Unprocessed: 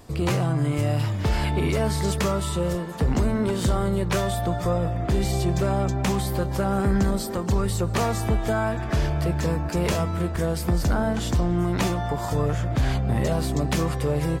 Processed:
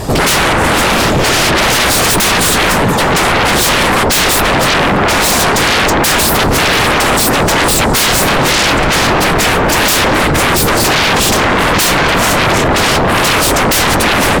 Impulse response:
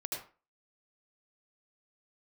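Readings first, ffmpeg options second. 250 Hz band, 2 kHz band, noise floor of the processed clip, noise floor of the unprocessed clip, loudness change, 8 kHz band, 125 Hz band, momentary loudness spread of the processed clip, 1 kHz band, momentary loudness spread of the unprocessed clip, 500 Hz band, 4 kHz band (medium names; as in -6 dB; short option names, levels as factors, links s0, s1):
+10.0 dB, +24.0 dB, -11 dBFS, -29 dBFS, +15.0 dB, +22.5 dB, +5.0 dB, 1 LU, +19.0 dB, 2 LU, +13.0 dB, +24.5 dB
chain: -af "afftfilt=real='hypot(re,im)*cos(2*PI*random(0))':imag='hypot(re,im)*sin(2*PI*random(1))':win_size=512:overlap=0.75,apsyclip=11.2,aeval=exprs='1.06*sin(PI/2*7.08*val(0)/1.06)':c=same,volume=0.398"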